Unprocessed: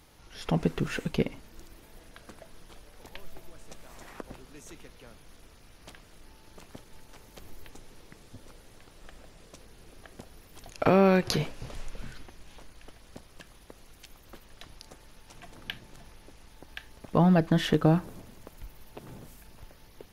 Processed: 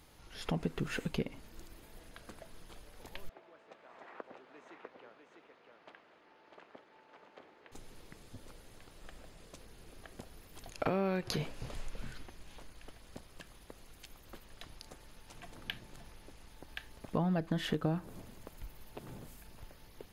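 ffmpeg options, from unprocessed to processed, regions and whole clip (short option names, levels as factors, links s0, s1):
-filter_complex "[0:a]asettb=1/sr,asplit=3[s0][s1][s2];[s0]atrim=end=3.294[s3];[s1]atrim=start=3.29:end=7.72,asetpts=PTS-STARTPTS,afade=t=in:d=0.004:c=qsin,afade=t=out:st=4.426:d=0.004:c=qsin,highpass=410,lowpass=2100,aecho=1:1:649:0.562,atrim=end_sample=195363[s4];[s2]atrim=start=7.716[s5];[s3][s4]acrossfade=d=0.004:c1=hsin:c2=qsin[s6];[s6][s5]acrossfade=d=0.004:c1=qsin:c2=hsin,acompressor=threshold=0.0316:ratio=2.5,bandreject=f=5700:w=16,volume=0.75"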